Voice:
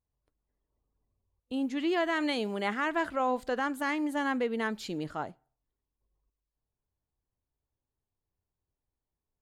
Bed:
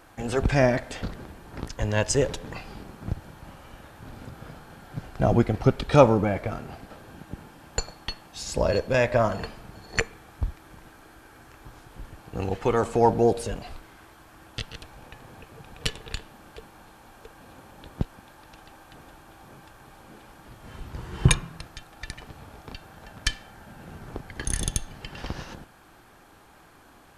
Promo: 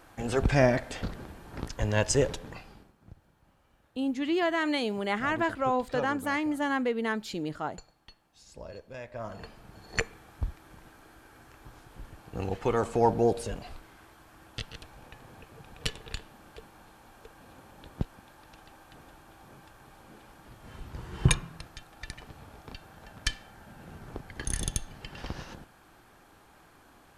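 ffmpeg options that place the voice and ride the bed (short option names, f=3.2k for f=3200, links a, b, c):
-filter_complex "[0:a]adelay=2450,volume=1.5dB[a];[1:a]volume=14.5dB,afade=t=out:st=2.22:d=0.71:silence=0.11885,afade=t=in:st=9.13:d=0.79:silence=0.149624[b];[a][b]amix=inputs=2:normalize=0"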